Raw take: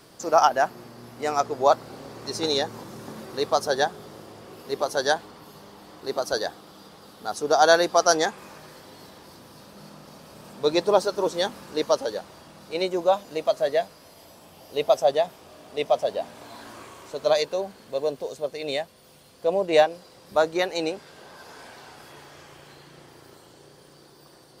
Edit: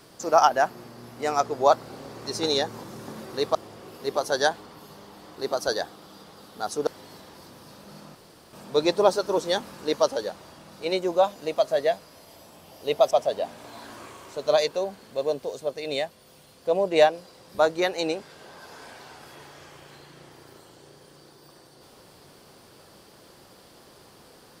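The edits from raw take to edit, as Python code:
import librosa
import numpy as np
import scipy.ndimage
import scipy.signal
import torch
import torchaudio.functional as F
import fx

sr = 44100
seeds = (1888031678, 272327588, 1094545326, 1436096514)

y = fx.edit(x, sr, fx.cut(start_s=3.55, length_s=0.65),
    fx.cut(start_s=7.52, length_s=1.24),
    fx.room_tone_fill(start_s=10.04, length_s=0.38),
    fx.cut(start_s=15.0, length_s=0.88), tone=tone)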